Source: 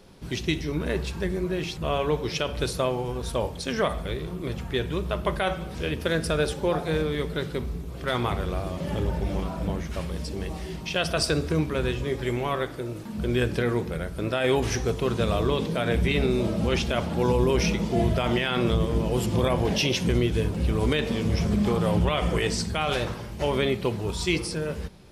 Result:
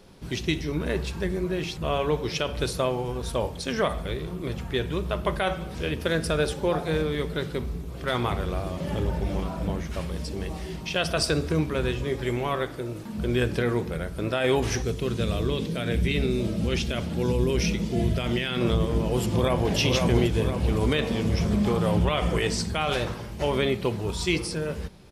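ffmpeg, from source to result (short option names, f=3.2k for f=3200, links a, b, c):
-filter_complex "[0:a]asettb=1/sr,asplit=3[a][b][c];[a]atrim=end=14.824[d];[b]atrim=start=14.82:end=18.61,asetpts=PTS-STARTPTS,afade=t=in:d=0.004:c=qsin,afade=t=out:st=3.786:d=0.004:c=qsin,equalizer=f=890:w=0.9:g=-9.5[e];[c]atrim=start=18.606[f];[d][e]acrossfade=d=0.004:c1=hsin:c2=qsin[g];[g][f]acrossfade=d=0.004:c1=qsin:c2=hsin,asplit=2[h][i];[i]afade=t=in:st=19.23:d=0.01,afade=t=out:st=19.75:d=0.01,aecho=0:1:510|1020|1530|2040|2550|3060|3570|4080:0.707946|0.38937|0.214154|0.117784|0.0647815|0.0356298|0.0195964|0.010778[j];[h][j]amix=inputs=2:normalize=0"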